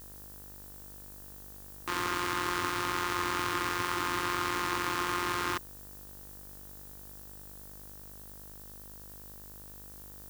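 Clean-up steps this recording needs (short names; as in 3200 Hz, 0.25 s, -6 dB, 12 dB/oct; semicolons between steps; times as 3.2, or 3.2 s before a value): de-hum 49.9 Hz, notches 38; denoiser 30 dB, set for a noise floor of -48 dBFS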